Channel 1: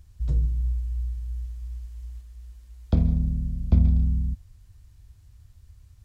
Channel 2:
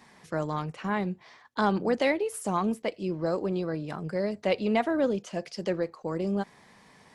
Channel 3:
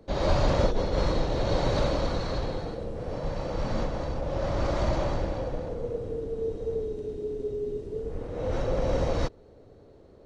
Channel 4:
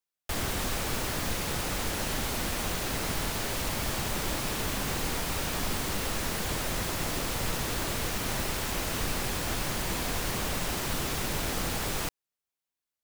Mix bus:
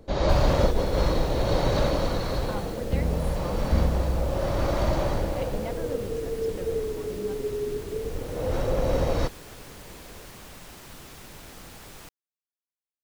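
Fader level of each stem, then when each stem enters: −5.5, −12.5, +2.0, −13.5 decibels; 0.00, 0.90, 0.00, 0.00 seconds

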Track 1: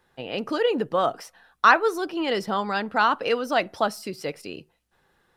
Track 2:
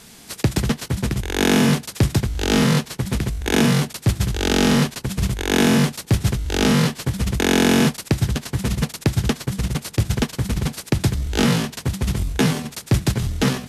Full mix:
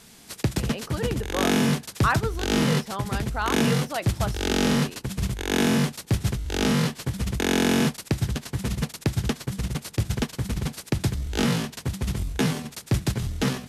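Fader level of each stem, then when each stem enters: −7.5, −5.5 decibels; 0.40, 0.00 seconds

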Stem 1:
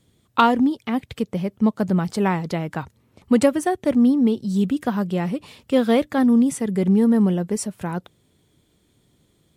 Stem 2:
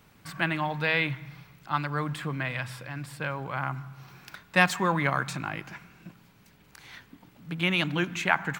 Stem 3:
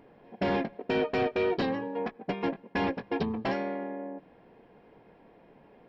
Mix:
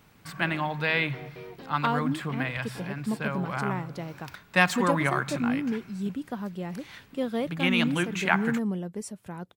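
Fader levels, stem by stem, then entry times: −11.5, 0.0, −16.5 decibels; 1.45, 0.00, 0.00 seconds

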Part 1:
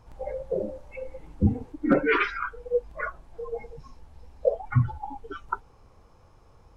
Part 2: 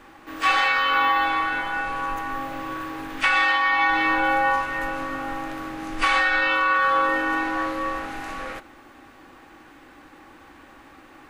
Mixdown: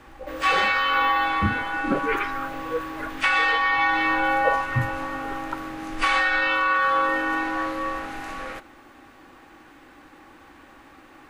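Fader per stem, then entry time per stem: −3.5, −1.0 decibels; 0.00, 0.00 seconds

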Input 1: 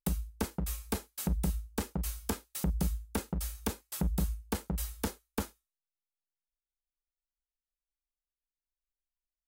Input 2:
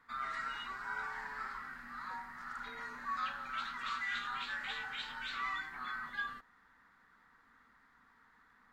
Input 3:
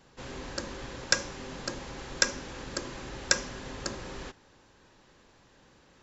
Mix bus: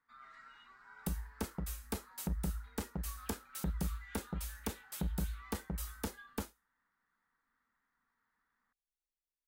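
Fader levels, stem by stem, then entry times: −5.5 dB, −16.5 dB, muted; 1.00 s, 0.00 s, muted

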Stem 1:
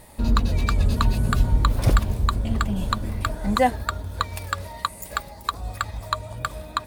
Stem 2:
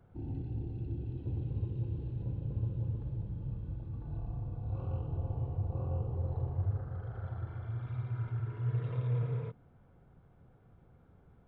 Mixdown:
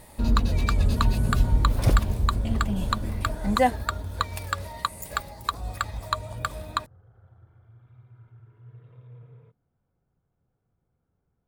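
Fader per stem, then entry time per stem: −1.5, −15.0 decibels; 0.00, 0.00 seconds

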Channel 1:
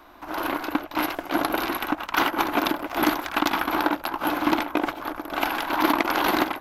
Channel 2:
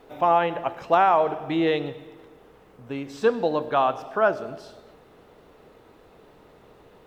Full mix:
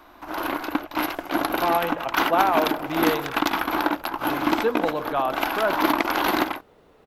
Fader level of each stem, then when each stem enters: 0.0, −3.0 decibels; 0.00, 1.40 seconds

